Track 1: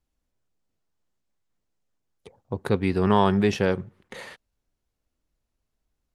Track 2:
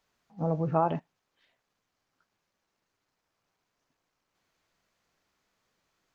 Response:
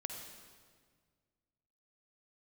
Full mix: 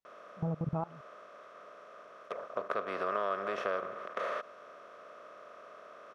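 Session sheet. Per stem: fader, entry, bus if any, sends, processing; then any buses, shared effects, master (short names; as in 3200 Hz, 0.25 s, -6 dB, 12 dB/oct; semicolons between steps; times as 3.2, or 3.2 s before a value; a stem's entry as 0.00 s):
+3.0 dB, 0.05 s, no send, per-bin compression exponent 0.4; double band-pass 870 Hz, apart 1 oct; tilt +2.5 dB/oct
-5.0 dB, 0.00 s, no send, bell 140 Hz +10.5 dB 0.61 oct; level quantiser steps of 23 dB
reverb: off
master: compressor 2.5:1, threshold -32 dBFS, peak gain reduction 8 dB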